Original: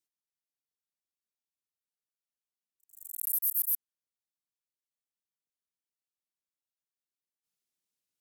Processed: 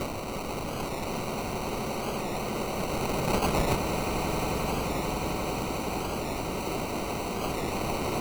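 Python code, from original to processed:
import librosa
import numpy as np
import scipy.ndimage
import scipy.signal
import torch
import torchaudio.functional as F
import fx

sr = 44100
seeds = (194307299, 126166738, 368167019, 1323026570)

p1 = x + 0.5 * 10.0 ** (-24.0 / 20.0) * np.diff(np.sign(x), prepend=np.sign(x[:1]))
p2 = p1 + 0.73 * np.pad(p1, (int(5.3 * sr / 1000.0), 0))[:len(p1)]
p3 = (np.mod(10.0 ** (25.5 / 20.0) * p2 + 1.0, 2.0) - 1.0) / 10.0 ** (25.5 / 20.0)
p4 = p2 + (p3 * librosa.db_to_amplitude(-7.5))
p5 = fx.sample_hold(p4, sr, seeds[0], rate_hz=1700.0, jitter_pct=0)
p6 = p5 + fx.echo_swell(p5, sr, ms=88, loudest=8, wet_db=-12.5, dry=0)
p7 = fx.record_warp(p6, sr, rpm=45.0, depth_cents=100.0)
y = p7 * librosa.db_to_amplitude(-5.0)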